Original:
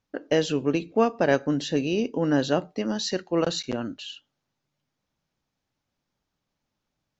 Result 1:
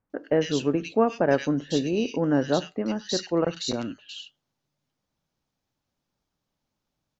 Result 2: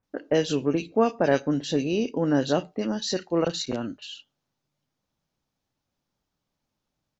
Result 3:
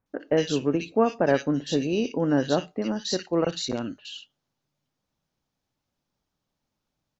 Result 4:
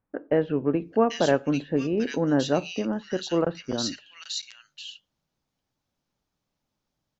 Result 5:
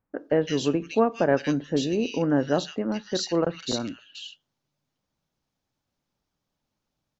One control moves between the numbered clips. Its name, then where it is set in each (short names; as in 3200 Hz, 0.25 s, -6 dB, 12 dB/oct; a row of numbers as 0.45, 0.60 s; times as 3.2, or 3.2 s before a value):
bands offset in time, time: 100, 30, 60, 790, 160 ms